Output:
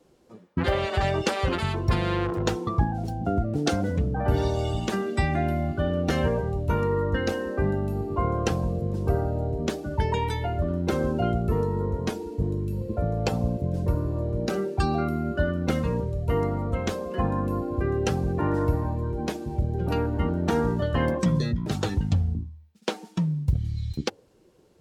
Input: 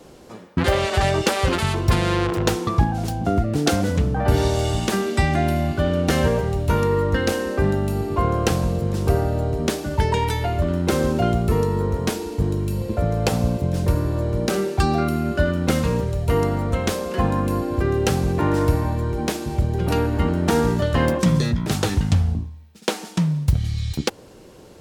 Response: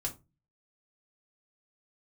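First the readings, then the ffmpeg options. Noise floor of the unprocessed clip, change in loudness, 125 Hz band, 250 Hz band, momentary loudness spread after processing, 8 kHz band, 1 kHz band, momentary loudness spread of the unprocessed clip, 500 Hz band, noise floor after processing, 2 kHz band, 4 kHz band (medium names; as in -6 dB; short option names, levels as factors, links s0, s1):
-45 dBFS, -5.0 dB, -5.0 dB, -5.0 dB, 5 LU, -10.5 dB, -5.5 dB, 4 LU, -5.0 dB, -57 dBFS, -6.0 dB, -7.5 dB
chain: -af "afftdn=nr=12:nf=-31,volume=0.562"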